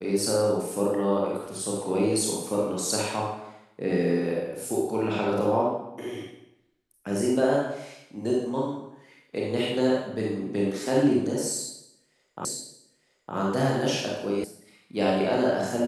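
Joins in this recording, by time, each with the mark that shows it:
12.45 s: repeat of the last 0.91 s
14.44 s: sound stops dead

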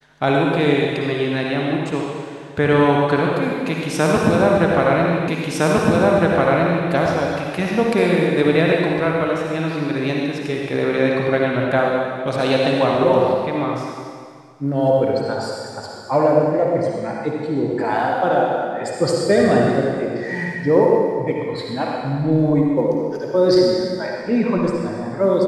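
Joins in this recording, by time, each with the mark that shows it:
5.28 s: repeat of the last 1.61 s

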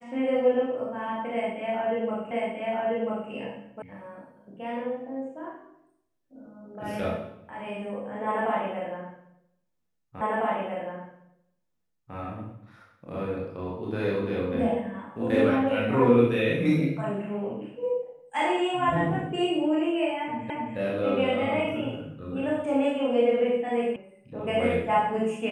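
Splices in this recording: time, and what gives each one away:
2.31 s: repeat of the last 0.99 s
3.82 s: sound stops dead
10.21 s: repeat of the last 1.95 s
20.50 s: repeat of the last 0.27 s
23.96 s: sound stops dead

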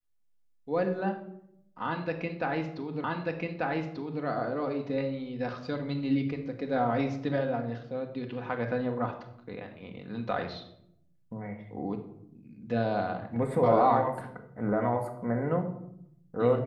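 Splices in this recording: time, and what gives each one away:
3.04 s: repeat of the last 1.19 s

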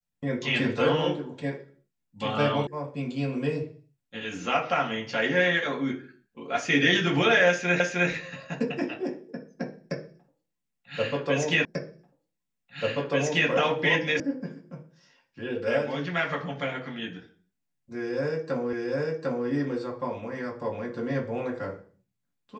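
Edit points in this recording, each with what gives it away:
2.67 s: sound stops dead
7.80 s: repeat of the last 0.31 s
11.65 s: repeat of the last 1.84 s
14.20 s: sound stops dead
18.73 s: repeat of the last 0.75 s

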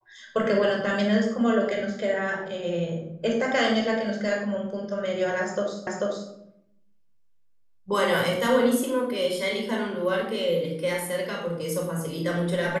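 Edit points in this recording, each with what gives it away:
5.87 s: repeat of the last 0.44 s

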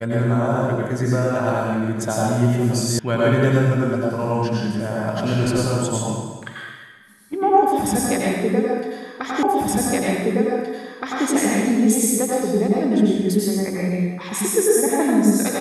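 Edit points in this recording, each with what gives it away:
2.99 s: sound stops dead
9.43 s: repeat of the last 1.82 s

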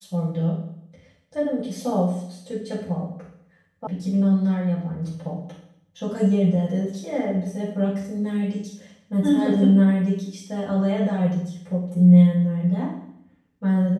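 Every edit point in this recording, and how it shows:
3.87 s: sound stops dead

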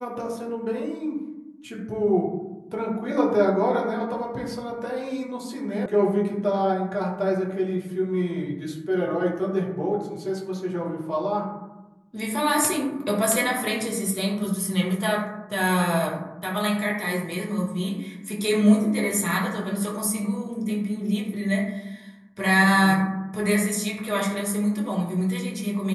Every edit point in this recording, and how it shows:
5.86 s: sound stops dead

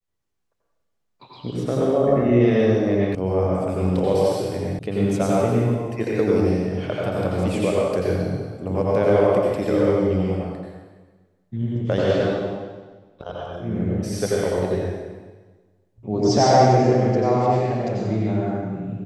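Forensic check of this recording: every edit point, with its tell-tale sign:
3.15 s: sound stops dead
4.79 s: sound stops dead

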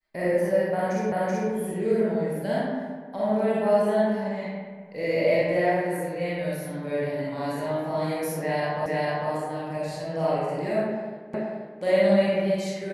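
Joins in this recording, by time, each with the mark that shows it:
1.12 s: repeat of the last 0.38 s
8.86 s: repeat of the last 0.45 s
11.34 s: repeat of the last 0.48 s

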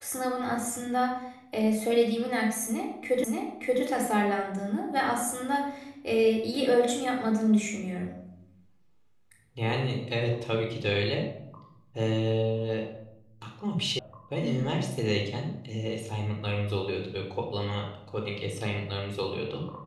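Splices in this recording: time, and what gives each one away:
3.24 s: repeat of the last 0.58 s
13.99 s: sound stops dead

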